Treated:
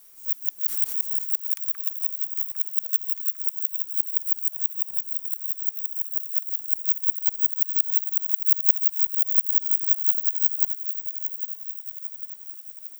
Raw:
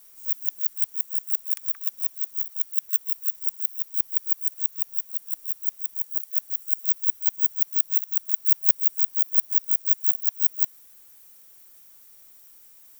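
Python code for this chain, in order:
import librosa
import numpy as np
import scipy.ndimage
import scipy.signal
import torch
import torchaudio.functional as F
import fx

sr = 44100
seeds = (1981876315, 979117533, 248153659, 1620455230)

y = fx.echo_feedback(x, sr, ms=802, feedback_pct=57, wet_db=-8.5)
y = fx.pre_swell(y, sr, db_per_s=91.0, at=(0.66, 1.24), fade=0.02)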